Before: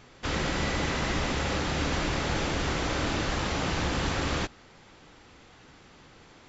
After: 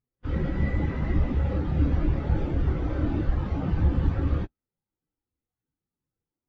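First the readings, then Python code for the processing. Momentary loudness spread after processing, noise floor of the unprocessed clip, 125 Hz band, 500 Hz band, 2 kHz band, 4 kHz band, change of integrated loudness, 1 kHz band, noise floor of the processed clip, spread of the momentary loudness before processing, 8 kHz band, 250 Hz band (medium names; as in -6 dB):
4 LU, -54 dBFS, +7.5 dB, -3.0 dB, -11.0 dB, -19.5 dB, +2.0 dB, -8.5 dB, under -85 dBFS, 2 LU, no reading, +3.0 dB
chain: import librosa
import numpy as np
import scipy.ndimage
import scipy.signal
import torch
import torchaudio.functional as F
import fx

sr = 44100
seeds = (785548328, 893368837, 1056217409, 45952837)

y = fx.spectral_expand(x, sr, expansion=2.5)
y = y * librosa.db_to_amplitude(3.5)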